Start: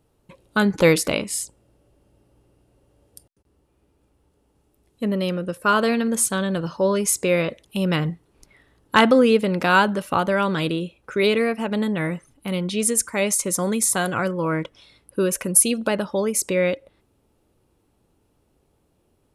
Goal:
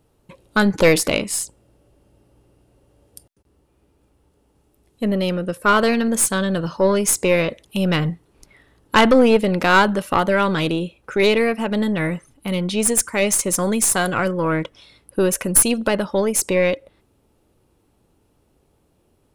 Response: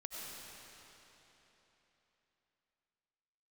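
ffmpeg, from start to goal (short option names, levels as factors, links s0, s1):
-af "aeval=exprs='(tanh(3.16*val(0)+0.45)-tanh(0.45))/3.16':c=same,volume=1.78"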